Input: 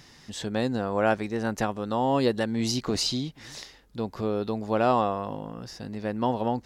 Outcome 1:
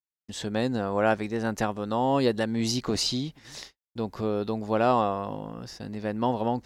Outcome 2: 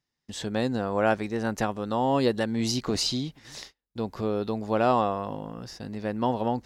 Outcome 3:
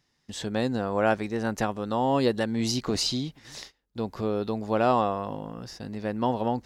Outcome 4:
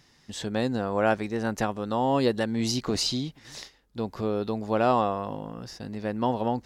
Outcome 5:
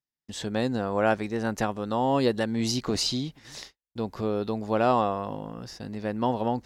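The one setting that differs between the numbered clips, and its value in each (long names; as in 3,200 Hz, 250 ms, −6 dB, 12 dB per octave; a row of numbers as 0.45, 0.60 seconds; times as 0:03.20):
noise gate, range: −58, −32, −20, −8, −46 decibels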